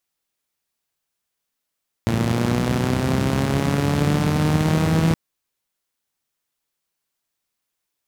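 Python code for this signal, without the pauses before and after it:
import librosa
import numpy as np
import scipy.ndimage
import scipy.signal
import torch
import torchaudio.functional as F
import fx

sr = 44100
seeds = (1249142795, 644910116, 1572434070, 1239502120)

y = fx.engine_four_rev(sr, seeds[0], length_s=3.07, rpm=3400, resonances_hz=(100.0, 170.0), end_rpm=4900)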